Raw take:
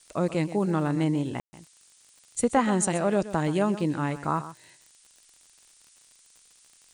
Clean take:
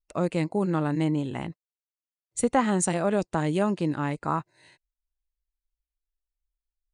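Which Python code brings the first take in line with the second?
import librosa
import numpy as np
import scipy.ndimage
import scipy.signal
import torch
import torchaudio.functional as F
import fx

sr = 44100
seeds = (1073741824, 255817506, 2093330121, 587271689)

y = fx.fix_declick_ar(x, sr, threshold=6.5)
y = fx.fix_ambience(y, sr, seeds[0], print_start_s=6.38, print_end_s=6.88, start_s=1.4, end_s=1.53)
y = fx.noise_reduce(y, sr, print_start_s=1.67, print_end_s=2.17, reduce_db=30.0)
y = fx.fix_echo_inverse(y, sr, delay_ms=127, level_db=-14.0)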